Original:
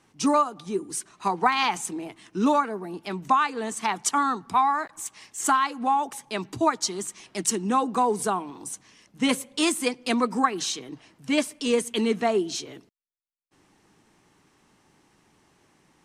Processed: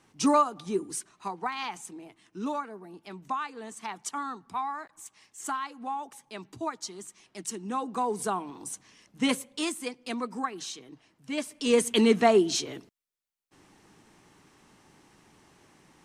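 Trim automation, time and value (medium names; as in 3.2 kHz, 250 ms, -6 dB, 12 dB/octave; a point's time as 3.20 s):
0.83 s -1 dB
1.35 s -11 dB
7.49 s -11 dB
8.49 s -2.5 dB
9.25 s -2.5 dB
9.79 s -9.5 dB
11.34 s -9.5 dB
11.84 s +3 dB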